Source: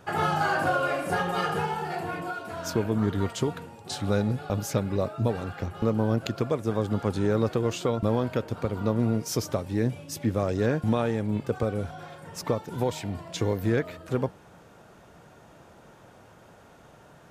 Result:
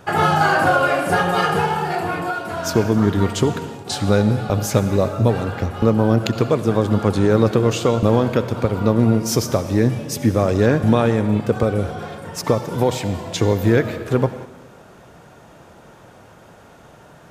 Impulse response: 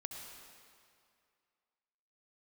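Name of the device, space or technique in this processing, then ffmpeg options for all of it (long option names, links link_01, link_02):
keyed gated reverb: -filter_complex "[0:a]asplit=3[link_01][link_02][link_03];[1:a]atrim=start_sample=2205[link_04];[link_02][link_04]afir=irnorm=-1:irlink=0[link_05];[link_03]apad=whole_len=762947[link_06];[link_05][link_06]sidechaingate=range=-9dB:threshold=-46dB:ratio=16:detection=peak,volume=-1.5dB[link_07];[link_01][link_07]amix=inputs=2:normalize=0,volume=5.5dB"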